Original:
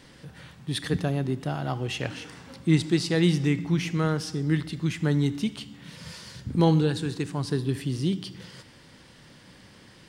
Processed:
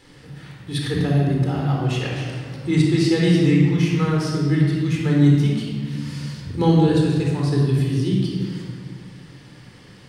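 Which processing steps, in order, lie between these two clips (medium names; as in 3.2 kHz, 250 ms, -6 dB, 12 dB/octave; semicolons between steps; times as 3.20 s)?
hum notches 50/100/150 Hz; simulated room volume 2600 m³, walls mixed, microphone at 4.1 m; trim -2 dB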